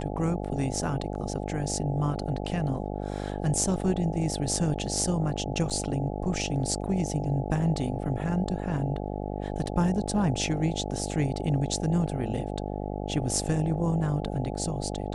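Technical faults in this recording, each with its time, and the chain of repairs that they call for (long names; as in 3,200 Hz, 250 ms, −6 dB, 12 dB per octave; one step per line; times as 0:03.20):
mains buzz 50 Hz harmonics 17 −33 dBFS
0:05.70–0:05.71: drop-out 6.8 ms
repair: hum removal 50 Hz, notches 17
repair the gap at 0:05.70, 6.8 ms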